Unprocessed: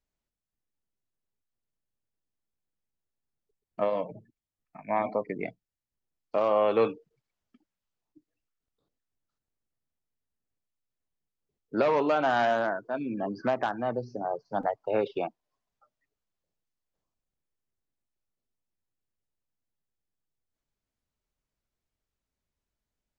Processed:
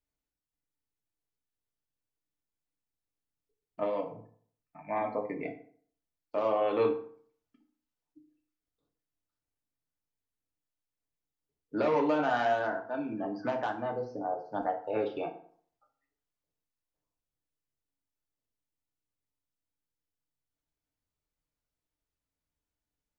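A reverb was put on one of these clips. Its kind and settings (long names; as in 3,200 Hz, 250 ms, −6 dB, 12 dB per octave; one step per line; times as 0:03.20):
feedback delay network reverb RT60 0.54 s, low-frequency decay 1×, high-frequency decay 0.65×, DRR 1.5 dB
level −6 dB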